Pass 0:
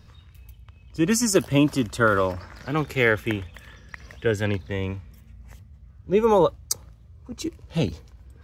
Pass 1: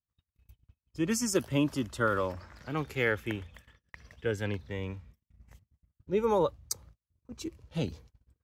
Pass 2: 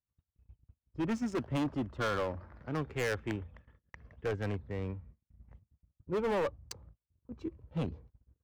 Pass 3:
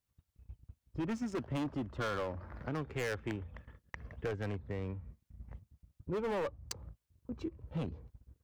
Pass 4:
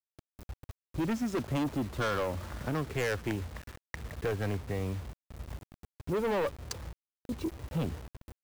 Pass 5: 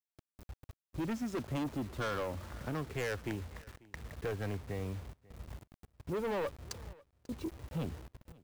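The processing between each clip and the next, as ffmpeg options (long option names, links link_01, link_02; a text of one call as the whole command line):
ffmpeg -i in.wav -af "agate=range=-40dB:threshold=-43dB:ratio=16:detection=peak,volume=-8.5dB" out.wav
ffmpeg -i in.wav -af "adynamicsmooth=sensitivity=3:basefreq=1200,asoftclip=type=hard:threshold=-28.5dB" out.wav
ffmpeg -i in.wav -af "acompressor=threshold=-45dB:ratio=3,volume=7dB" out.wav
ffmpeg -i in.wav -af "acrusher=bits=8:mix=0:aa=0.000001,asoftclip=type=tanh:threshold=-31.5dB,volume=7dB" out.wav
ffmpeg -i in.wav -af "aecho=1:1:542:0.0668,volume=-5dB" out.wav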